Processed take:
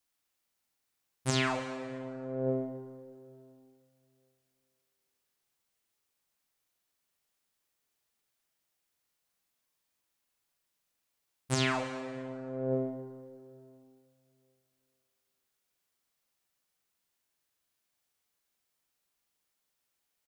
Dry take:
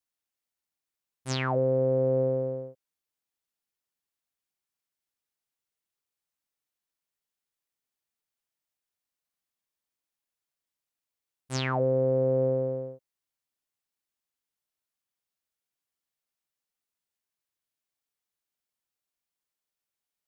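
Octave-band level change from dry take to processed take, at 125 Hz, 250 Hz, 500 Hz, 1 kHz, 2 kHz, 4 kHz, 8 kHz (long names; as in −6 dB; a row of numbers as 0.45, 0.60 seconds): −7.0, −1.5, −10.0, −2.0, +2.0, +2.5, +3.5 decibels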